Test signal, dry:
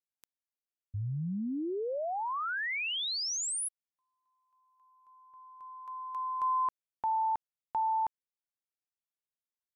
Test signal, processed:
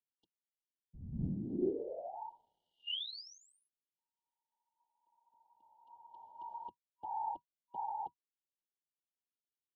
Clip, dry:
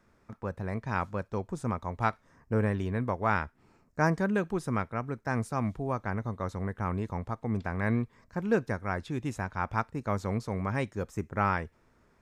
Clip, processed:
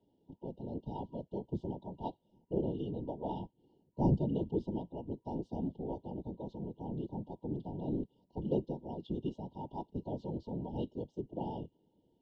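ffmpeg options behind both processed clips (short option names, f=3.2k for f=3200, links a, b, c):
-af "highpass=f=140:w=0.5412,highpass=f=140:w=1.3066,equalizer=f=160:t=q:w=4:g=9,equalizer=f=330:t=q:w=4:g=10,equalizer=f=710:t=q:w=4:g=-4,equalizer=f=2.8k:t=q:w=4:g=6,lowpass=f=3.8k:w=0.5412,lowpass=f=3.8k:w=1.3066,afftfilt=real='hypot(re,im)*cos(2*PI*random(0))':imag='hypot(re,im)*sin(2*PI*random(1))':win_size=512:overlap=0.75,afftfilt=real='re*(1-between(b*sr/4096,960,2800))':imag='im*(1-between(b*sr/4096,960,2800))':win_size=4096:overlap=0.75,volume=-2dB"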